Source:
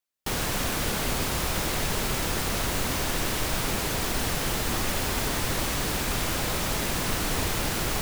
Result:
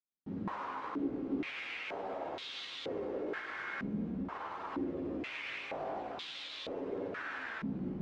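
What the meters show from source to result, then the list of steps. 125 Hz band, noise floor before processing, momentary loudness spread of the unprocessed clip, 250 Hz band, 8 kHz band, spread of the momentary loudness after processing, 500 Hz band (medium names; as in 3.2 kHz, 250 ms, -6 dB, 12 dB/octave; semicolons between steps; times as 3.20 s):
-17.5 dB, -29 dBFS, 0 LU, -6.0 dB, under -35 dB, 4 LU, -8.0 dB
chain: peaking EQ 320 Hz +6 dB 1.2 oct; feedback comb 270 Hz, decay 0.99 s, mix 80%; spring tank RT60 3.5 s, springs 53 ms, chirp 70 ms, DRR 0 dB; peak limiter -28.5 dBFS, peak gain reduction 5.5 dB; chorus voices 2, 0.43 Hz, delay 15 ms, depth 4.9 ms; distance through air 120 m; step-sequenced band-pass 2.1 Hz 200–3600 Hz; trim +14.5 dB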